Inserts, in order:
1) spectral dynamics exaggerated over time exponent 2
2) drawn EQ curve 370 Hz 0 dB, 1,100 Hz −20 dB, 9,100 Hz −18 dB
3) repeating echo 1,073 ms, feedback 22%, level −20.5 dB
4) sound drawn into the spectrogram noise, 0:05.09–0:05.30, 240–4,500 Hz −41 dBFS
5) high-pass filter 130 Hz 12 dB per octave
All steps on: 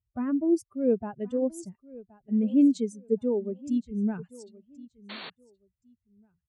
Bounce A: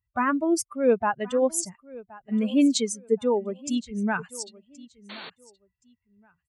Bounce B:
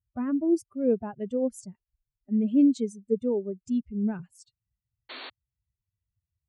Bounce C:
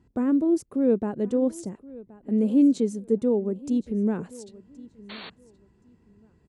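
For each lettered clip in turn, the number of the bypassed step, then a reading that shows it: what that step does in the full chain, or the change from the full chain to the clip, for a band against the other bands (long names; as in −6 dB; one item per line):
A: 2, 1 kHz band +16.0 dB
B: 3, change in momentary loudness spread −1 LU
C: 1, change in integrated loudness +3.0 LU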